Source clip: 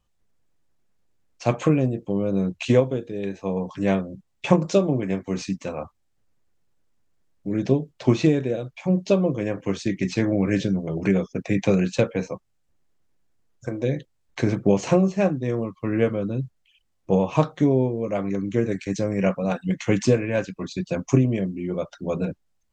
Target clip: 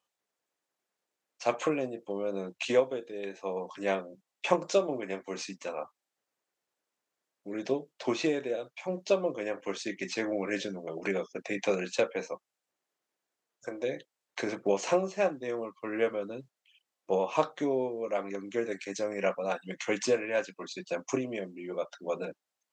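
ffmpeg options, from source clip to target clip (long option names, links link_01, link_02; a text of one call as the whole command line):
ffmpeg -i in.wav -af "highpass=470,volume=-3dB" out.wav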